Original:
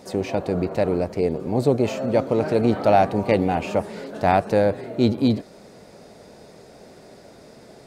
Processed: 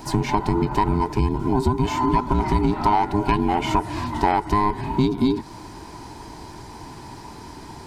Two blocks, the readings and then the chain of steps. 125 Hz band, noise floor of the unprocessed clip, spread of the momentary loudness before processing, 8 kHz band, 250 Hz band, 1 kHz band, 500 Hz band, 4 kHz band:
+2.5 dB, -47 dBFS, 7 LU, n/a, +0.5 dB, +4.0 dB, -6.5 dB, +2.5 dB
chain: band inversion scrambler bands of 500 Hz; compressor 5:1, threshold -24 dBFS, peak gain reduction 11.5 dB; gain +7.5 dB

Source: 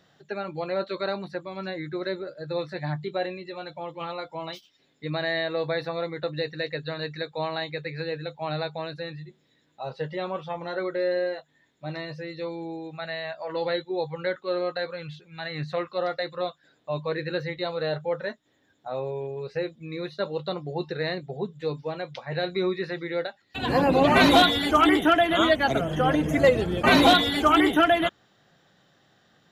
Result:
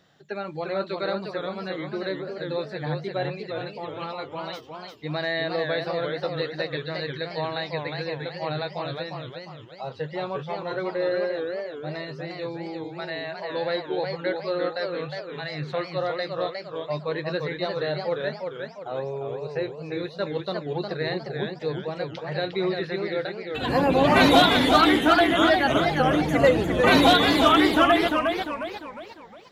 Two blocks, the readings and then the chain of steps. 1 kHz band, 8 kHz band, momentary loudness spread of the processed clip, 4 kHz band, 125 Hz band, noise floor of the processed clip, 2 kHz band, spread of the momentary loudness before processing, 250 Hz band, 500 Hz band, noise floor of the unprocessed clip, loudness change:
+1.5 dB, n/a, 17 LU, +1.5 dB, +1.5 dB, -43 dBFS, +1.5 dB, 16 LU, +1.5 dB, +1.5 dB, -66 dBFS, +1.0 dB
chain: warbling echo 0.354 s, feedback 42%, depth 176 cents, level -5 dB

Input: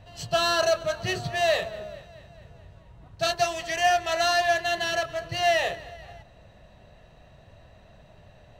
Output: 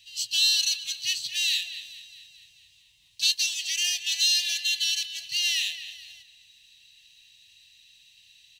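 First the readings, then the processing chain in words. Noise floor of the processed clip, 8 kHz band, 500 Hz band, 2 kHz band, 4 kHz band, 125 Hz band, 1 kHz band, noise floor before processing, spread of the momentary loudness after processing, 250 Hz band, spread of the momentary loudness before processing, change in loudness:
-60 dBFS, +8.5 dB, under -40 dB, -4.0 dB, +7.5 dB, under -25 dB, under -35 dB, -54 dBFS, 16 LU, under -30 dB, 16 LU, +1.0 dB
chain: inverse Chebyshev high-pass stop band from 1500 Hz, stop band 40 dB; in parallel at -1 dB: compressor, threshold -45 dBFS, peak gain reduction 18 dB; on the sum: speakerphone echo 0.23 s, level -11 dB; gain +7 dB

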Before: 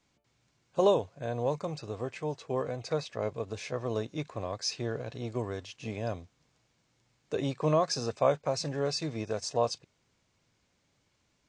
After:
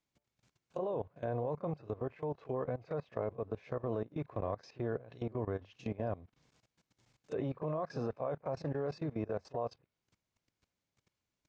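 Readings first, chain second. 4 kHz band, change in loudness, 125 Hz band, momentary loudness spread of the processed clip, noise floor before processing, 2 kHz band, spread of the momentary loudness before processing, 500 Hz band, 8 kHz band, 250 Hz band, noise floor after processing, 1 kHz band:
-22.5 dB, -6.5 dB, -4.5 dB, 4 LU, -74 dBFS, -9.0 dB, 10 LU, -6.5 dB, under -25 dB, -4.0 dB, under -85 dBFS, -8.0 dB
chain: reverse echo 31 ms -12.5 dB; level quantiser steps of 18 dB; treble ducked by the level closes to 1500 Hz, closed at -37.5 dBFS; gain +1 dB

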